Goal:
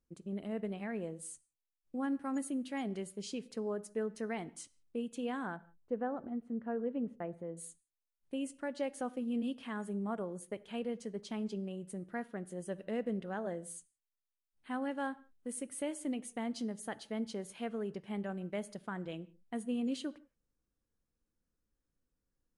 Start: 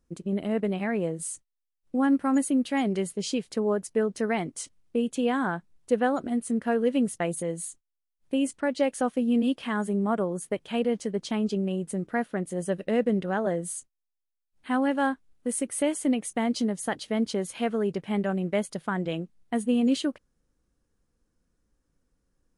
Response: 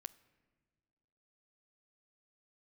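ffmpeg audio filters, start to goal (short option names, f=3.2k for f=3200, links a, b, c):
-filter_complex "[0:a]asettb=1/sr,asplit=3[a][b][c];[a]atrim=end=5.564[d];[b]atrim=start=5.56:end=7.57,asetpts=PTS-STARTPTS,afade=t=in:d=0.004:c=qsin,afade=t=out:st=2.006:d=0.004:c=qsin,lowpass=1.3k[e];[c]atrim=start=7.566[f];[d][e]acrossfade=d=0.004:c1=hsin:c2=qsin[g];[g][f]acrossfade=d=0.004:c1=qsin:c2=hsin[h];[1:a]atrim=start_sample=2205,afade=t=out:st=0.23:d=0.01,atrim=end_sample=10584[i];[h][i]afir=irnorm=-1:irlink=0,volume=-6.5dB"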